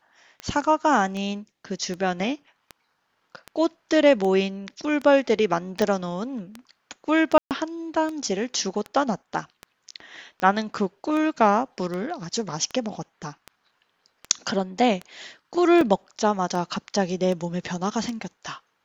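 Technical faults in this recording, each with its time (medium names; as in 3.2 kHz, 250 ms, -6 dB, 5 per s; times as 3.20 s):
tick 78 rpm -19 dBFS
5.82 s: pop -11 dBFS
7.38–7.51 s: dropout 128 ms
15.81 s: dropout 2.9 ms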